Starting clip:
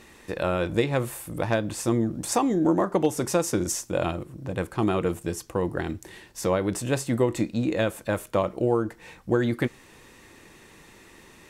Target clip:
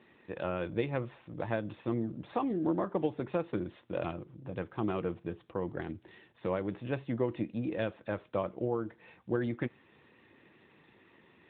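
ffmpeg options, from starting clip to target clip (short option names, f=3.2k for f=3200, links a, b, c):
-af "volume=-8.5dB" -ar 8000 -c:a libopencore_amrnb -b:a 12200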